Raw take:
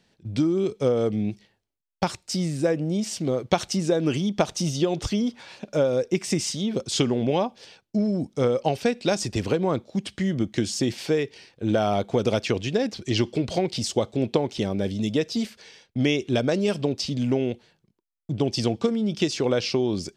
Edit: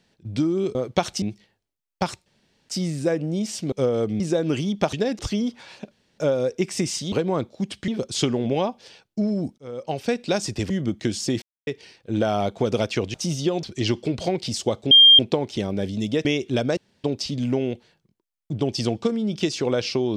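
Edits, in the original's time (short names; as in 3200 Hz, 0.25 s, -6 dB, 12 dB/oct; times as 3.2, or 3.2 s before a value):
0.75–1.23 swap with 3.3–3.77
2.27 insert room tone 0.43 s
4.5–4.99 swap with 12.67–12.93
5.71 insert room tone 0.27 s
8.35–8.91 fade in
9.47–10.23 move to 6.65
10.95–11.2 mute
14.21 add tone 3200 Hz -7.5 dBFS 0.28 s
15.27–16.04 cut
16.56–16.83 room tone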